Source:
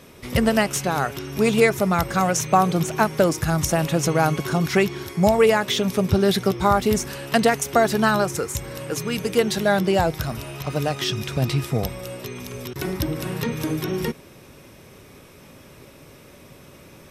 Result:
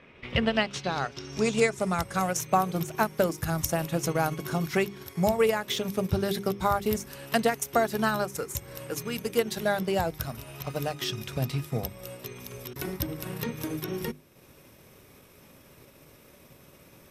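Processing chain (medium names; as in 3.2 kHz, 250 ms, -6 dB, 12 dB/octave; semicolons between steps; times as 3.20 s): transient shaper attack +2 dB, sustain -6 dB; hum notches 50/100/150/200/250/300/350/400 Hz; low-pass sweep 2.3 kHz -> 14 kHz, 0.02–2.49 s; trim -7.5 dB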